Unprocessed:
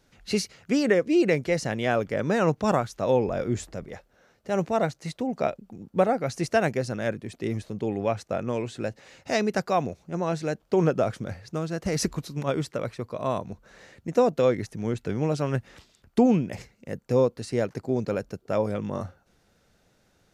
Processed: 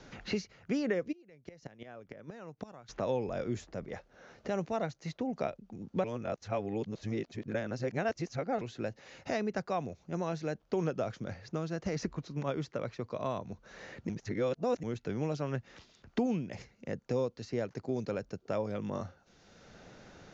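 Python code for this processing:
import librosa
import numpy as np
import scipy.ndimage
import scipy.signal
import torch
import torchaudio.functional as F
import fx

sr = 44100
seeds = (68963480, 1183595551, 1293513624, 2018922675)

y = fx.gate_flip(x, sr, shuts_db=-18.0, range_db=-32, at=(1.11, 2.88), fade=0.02)
y = fx.edit(y, sr, fx.reverse_span(start_s=6.04, length_s=2.57),
    fx.reverse_span(start_s=14.09, length_s=0.74), tone=tone)
y = scipy.signal.sosfilt(scipy.signal.butter(16, 7000.0, 'lowpass', fs=sr, output='sos'), y)
y = fx.band_squash(y, sr, depth_pct=70)
y = y * 10.0 ** (-8.5 / 20.0)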